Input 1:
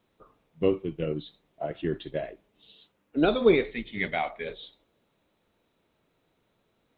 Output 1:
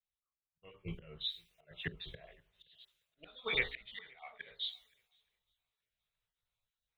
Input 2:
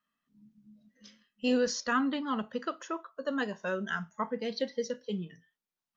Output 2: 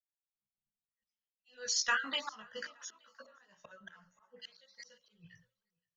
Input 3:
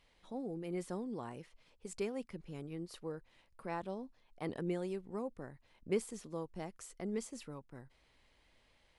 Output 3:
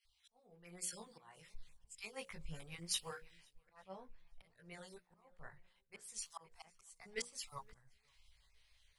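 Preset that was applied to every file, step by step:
time-frequency cells dropped at random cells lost 25%
chorus effect 0.26 Hz, delay 16 ms, depth 2.8 ms
speech leveller within 5 dB 0.5 s
guitar amp tone stack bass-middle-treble 10-0-10
downward compressor 4 to 1, threshold −48 dBFS
volume swells 393 ms
mains-hum notches 60/120/180/240/300/360/420/480/540/600 Hz
feedback echo with a long and a short gap by turns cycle 873 ms, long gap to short 1.5 to 1, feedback 31%, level −18.5 dB
multiband upward and downward expander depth 100%
level +11.5 dB

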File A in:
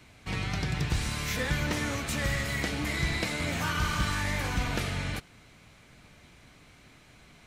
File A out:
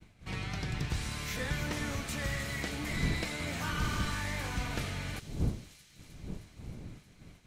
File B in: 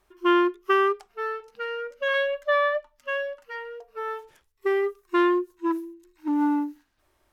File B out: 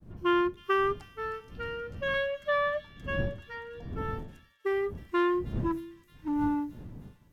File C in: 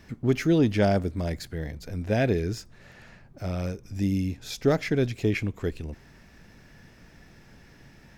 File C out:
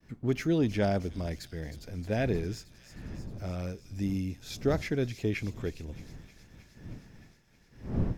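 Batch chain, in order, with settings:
wind on the microphone 160 Hz −36 dBFS
downward expander −44 dBFS
delay with a high-pass on its return 312 ms, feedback 73%, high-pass 4,400 Hz, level −9 dB
level −5.5 dB

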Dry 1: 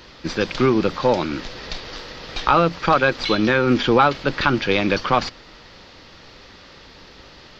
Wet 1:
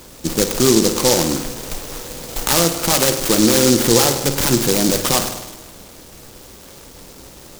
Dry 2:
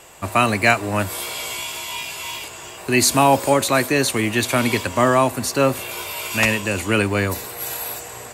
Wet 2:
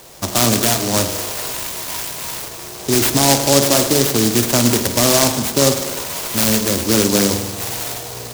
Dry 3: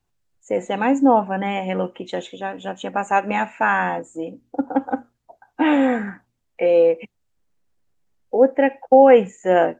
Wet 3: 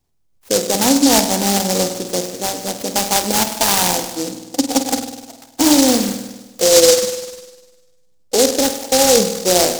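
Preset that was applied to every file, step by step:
parametric band 4,600 Hz −14.5 dB 0.44 octaves
mains-hum notches 50/100 Hz
brickwall limiter −10 dBFS
spring reverb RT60 1.2 s, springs 50 ms, chirp 75 ms, DRR 6.5 dB
short delay modulated by noise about 5,600 Hz, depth 0.19 ms
level +5 dB

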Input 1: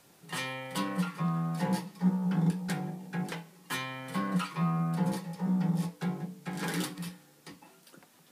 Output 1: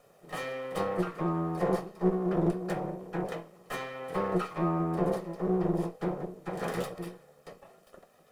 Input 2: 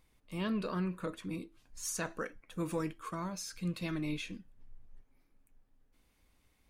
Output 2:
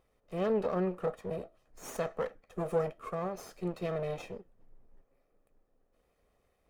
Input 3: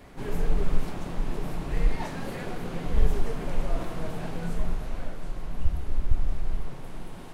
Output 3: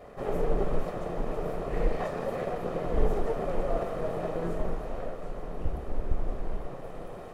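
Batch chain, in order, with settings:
lower of the sound and its delayed copy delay 1.6 ms
drawn EQ curve 100 Hz 0 dB, 460 Hz +14 dB, 3,800 Hz −3 dB
level −4.5 dB

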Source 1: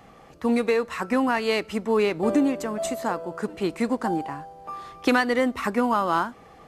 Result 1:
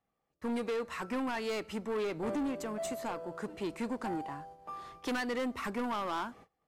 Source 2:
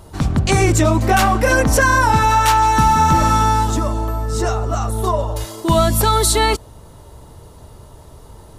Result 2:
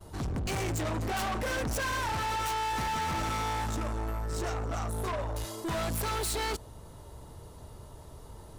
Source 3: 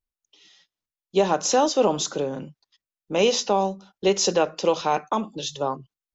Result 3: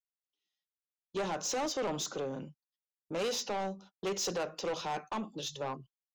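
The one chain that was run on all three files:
hard clipping −15 dBFS
noise gate −44 dBFS, range −27 dB
soft clipping −23 dBFS
level −7 dB

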